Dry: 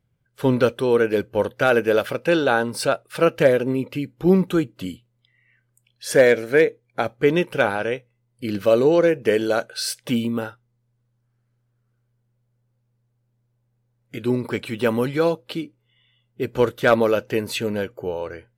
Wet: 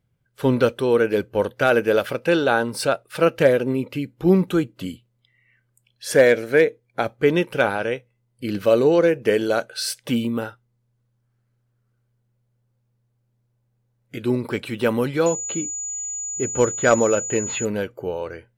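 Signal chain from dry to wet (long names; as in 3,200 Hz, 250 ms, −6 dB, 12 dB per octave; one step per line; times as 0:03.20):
0:15.26–0:17.65: switching amplifier with a slow clock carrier 6,900 Hz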